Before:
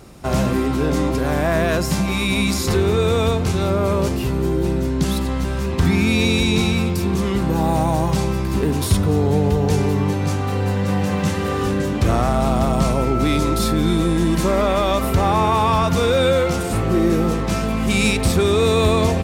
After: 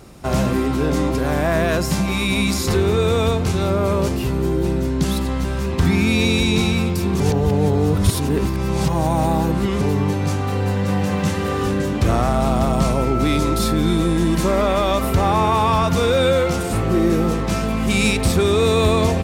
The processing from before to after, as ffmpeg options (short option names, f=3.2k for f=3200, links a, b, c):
-filter_complex "[0:a]asplit=3[a][b][c];[a]atrim=end=7.202[d];[b]atrim=start=7.198:end=9.812,asetpts=PTS-STARTPTS,areverse[e];[c]atrim=start=9.808[f];[d][e]acrossfade=d=0.004:c1=hsin:c2=hsin[g];[g][f]acrossfade=d=0.004:c1=hsin:c2=hsin"